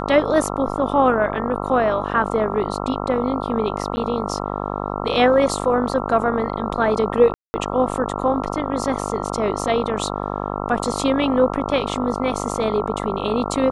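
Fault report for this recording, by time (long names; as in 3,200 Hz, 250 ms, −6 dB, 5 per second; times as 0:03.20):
mains buzz 50 Hz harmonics 27 −26 dBFS
0:03.96–0:03.97: drop-out 10 ms
0:07.34–0:07.54: drop-out 200 ms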